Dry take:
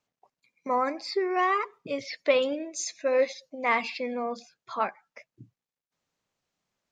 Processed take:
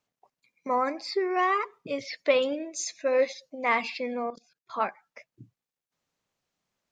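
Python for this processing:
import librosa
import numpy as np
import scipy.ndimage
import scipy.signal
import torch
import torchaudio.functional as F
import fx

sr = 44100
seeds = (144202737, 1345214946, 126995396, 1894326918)

y = fx.level_steps(x, sr, step_db=22, at=(4.3, 4.74))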